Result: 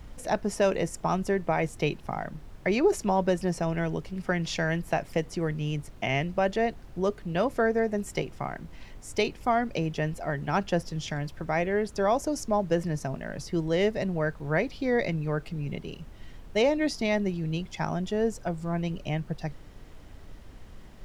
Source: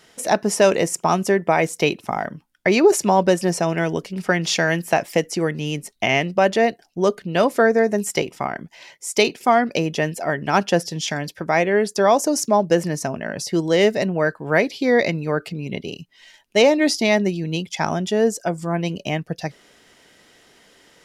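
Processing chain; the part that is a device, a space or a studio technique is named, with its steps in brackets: car interior (peaking EQ 140 Hz +8 dB 0.55 oct; treble shelf 4.8 kHz -7.5 dB; brown noise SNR 15 dB); trim -9 dB

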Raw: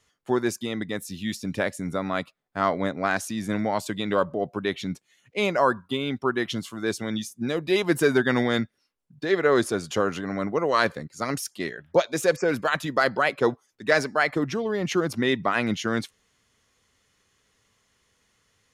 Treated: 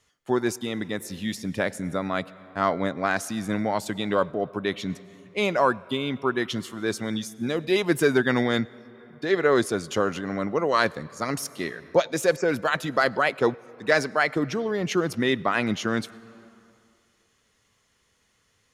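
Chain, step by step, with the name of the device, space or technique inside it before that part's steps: compressed reverb return (on a send at -14 dB: reverberation RT60 2.1 s, pre-delay 91 ms + compression 10:1, threshold -28 dBFS, peak gain reduction 12 dB)

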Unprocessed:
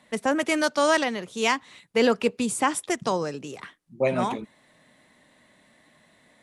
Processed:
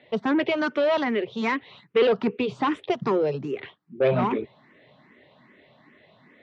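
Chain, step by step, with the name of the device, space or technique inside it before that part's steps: barber-pole phaser into a guitar amplifier (barber-pole phaser +2.5 Hz; saturation -25 dBFS, distortion -9 dB; cabinet simulation 75–3500 Hz, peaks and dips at 130 Hz +6 dB, 400 Hz +8 dB, 1.6 kHz -3 dB); trim +6.5 dB

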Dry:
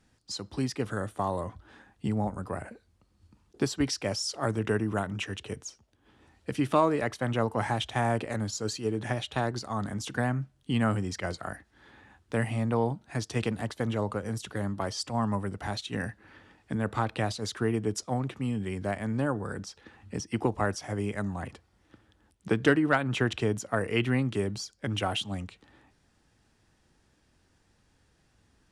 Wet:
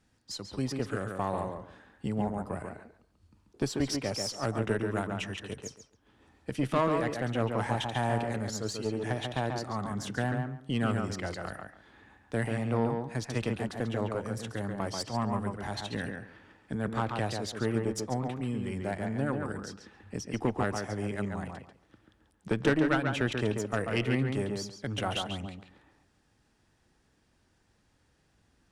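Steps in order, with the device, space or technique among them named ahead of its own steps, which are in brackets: rockabilly slapback (valve stage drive 18 dB, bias 0.6; tape echo 139 ms, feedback 22%, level -3 dB, low-pass 2.6 kHz)

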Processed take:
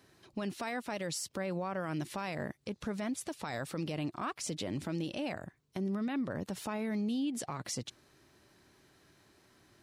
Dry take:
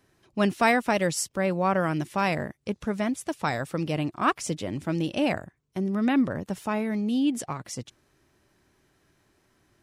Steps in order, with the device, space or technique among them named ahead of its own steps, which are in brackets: broadcast voice chain (high-pass 80 Hz 6 dB/octave; de-esser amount 45%; compression 5:1, threshold -32 dBFS, peak gain reduction 14.5 dB; peaking EQ 4.2 kHz +5 dB 0.46 oct; peak limiter -30 dBFS, peak gain reduction 9 dB); trim +2 dB

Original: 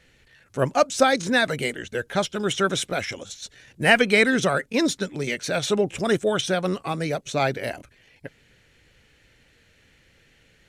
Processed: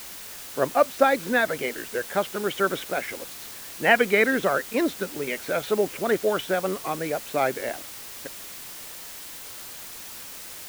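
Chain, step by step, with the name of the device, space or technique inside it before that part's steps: wax cylinder (band-pass 270–2200 Hz; wow and flutter; white noise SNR 13 dB)

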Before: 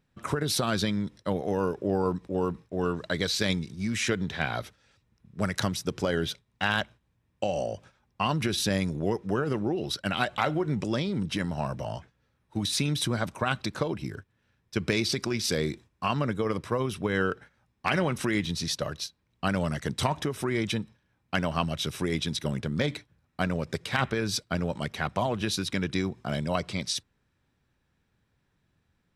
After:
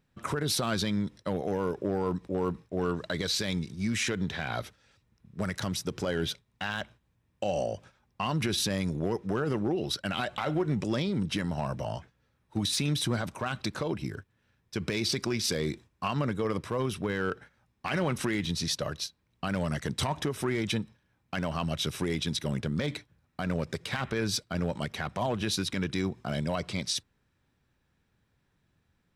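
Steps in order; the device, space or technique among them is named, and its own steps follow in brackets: limiter into clipper (peak limiter -18.5 dBFS, peak gain reduction 7.5 dB; hard clipper -20.5 dBFS, distortion -26 dB)

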